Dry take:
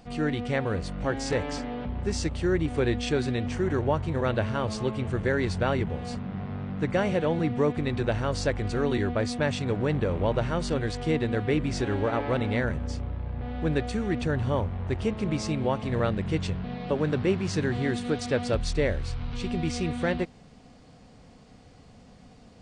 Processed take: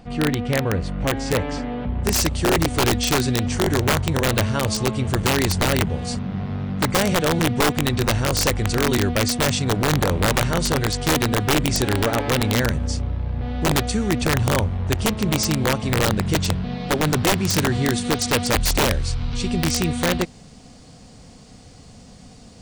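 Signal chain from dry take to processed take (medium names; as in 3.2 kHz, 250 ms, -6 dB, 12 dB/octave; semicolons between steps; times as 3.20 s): tone controls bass +3 dB, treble -4 dB, from 2.03 s treble +12 dB; integer overflow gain 16.5 dB; trim +5 dB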